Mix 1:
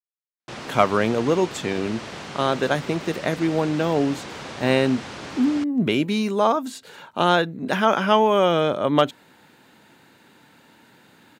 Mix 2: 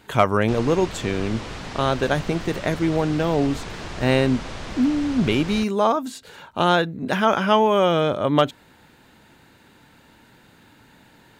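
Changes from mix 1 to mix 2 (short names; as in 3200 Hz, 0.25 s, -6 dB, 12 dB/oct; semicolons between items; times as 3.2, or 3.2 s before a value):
speech: entry -0.60 s; master: remove HPF 150 Hz 12 dB/oct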